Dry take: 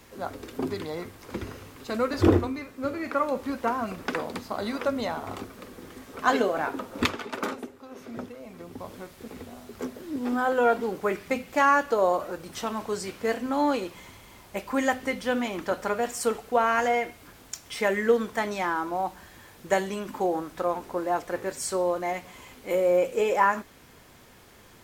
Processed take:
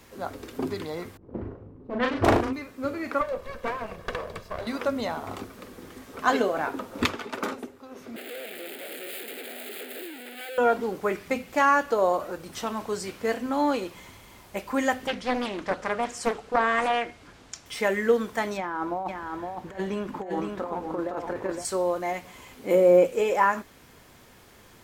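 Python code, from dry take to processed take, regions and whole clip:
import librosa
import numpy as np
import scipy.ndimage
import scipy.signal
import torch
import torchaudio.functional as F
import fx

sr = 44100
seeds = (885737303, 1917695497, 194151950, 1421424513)

y = fx.chain(x, sr, fx.self_delay(depth_ms=0.91),
    fx.env_lowpass(base_hz=320.0, full_db=-19.0),
    fx.doubler(ms=38.0, db=-3.5), at=(1.17, 2.53))
y = fx.chain(y, sr, fx.lower_of_two(delay_ms=1.8),
    fx.high_shelf(hz=3500.0, db=-8.5), at=(3.21, 4.67))
y = fx.chain(y, sr, fx.clip_1bit(),
    fx.highpass(hz=360.0, slope=24),
    fx.fixed_phaser(hz=2500.0, stages=4), at=(8.16, 10.58))
y = fx.chain(y, sr, fx.lowpass(hz=7000.0, slope=12),
    fx.doppler_dist(depth_ms=0.63), at=(15.07, 17.66))
y = fx.chain(y, sr, fx.over_compress(threshold_db=-29.0, ratio=-0.5),
    fx.lowpass(hz=1900.0, slope=6),
    fx.echo_single(ms=513, db=-4.5), at=(18.57, 21.65))
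y = fx.chain(y, sr, fx.highpass(hz=170.0, slope=12),
    fx.low_shelf(hz=430.0, db=12.0), at=(22.59, 23.07))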